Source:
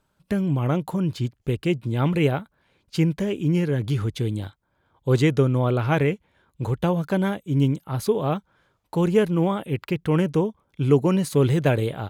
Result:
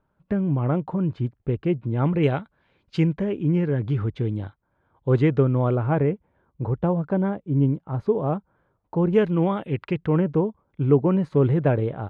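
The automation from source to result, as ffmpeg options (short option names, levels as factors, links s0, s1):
-af "asetnsamples=n=441:p=0,asendcmd='2.23 lowpass f 3400;3.07 lowpass f 1800;5.75 lowpass f 1100;9.13 lowpass f 2700;10.06 lowpass f 1400',lowpass=1500"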